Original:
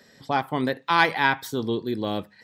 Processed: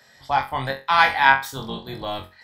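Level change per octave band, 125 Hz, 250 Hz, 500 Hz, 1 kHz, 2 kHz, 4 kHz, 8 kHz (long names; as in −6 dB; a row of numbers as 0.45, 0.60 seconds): −1.0, −8.5, −2.5, +5.0, +5.0, +3.0, +2.5 decibels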